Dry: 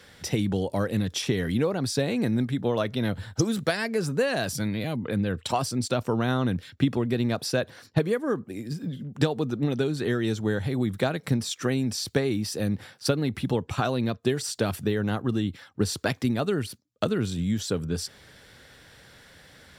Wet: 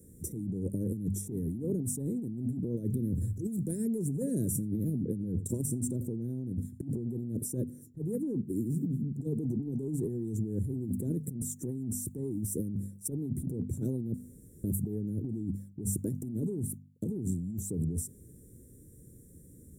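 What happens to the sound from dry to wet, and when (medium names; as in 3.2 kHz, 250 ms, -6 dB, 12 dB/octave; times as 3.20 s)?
2.75–3.48 s: compressor with a negative ratio -33 dBFS
4.01–7.46 s: delay 85 ms -19.5 dB
14.14–14.64 s: room tone
whole clip: inverse Chebyshev band-stop 690–4900 Hz, stop band 40 dB; de-hum 49.46 Hz, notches 5; compressor with a negative ratio -33 dBFS, ratio -1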